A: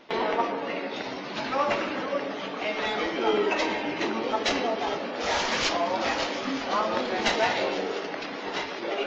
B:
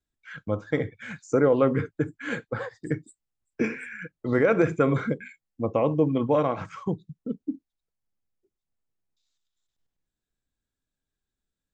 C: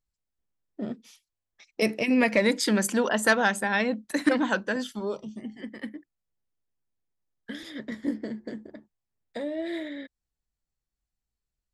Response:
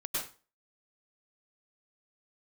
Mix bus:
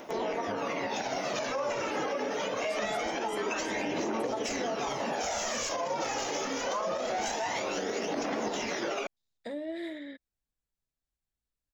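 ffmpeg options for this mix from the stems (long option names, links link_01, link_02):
-filter_complex "[0:a]acompressor=threshold=-28dB:ratio=6,aexciter=amount=7.4:drive=6.9:freq=6200,aphaser=in_gain=1:out_gain=1:delay=2.5:decay=0.46:speed=0.24:type=triangular,volume=0.5dB[link_01];[1:a]acompressor=threshold=-29dB:ratio=6,volume=-12dB,asplit=2[link_02][link_03];[2:a]alimiter=limit=-21dB:level=0:latency=1:release=299,adelay=100,volume=-5dB[link_04];[link_03]apad=whole_len=521978[link_05];[link_04][link_05]sidechaincompress=threshold=-52dB:ratio=8:attack=16:release=844[link_06];[link_01][link_02]amix=inputs=2:normalize=0,equalizer=frequency=640:width=1.4:gain=5,alimiter=limit=-23.5dB:level=0:latency=1:release=85,volume=0dB[link_07];[link_06][link_07]amix=inputs=2:normalize=0"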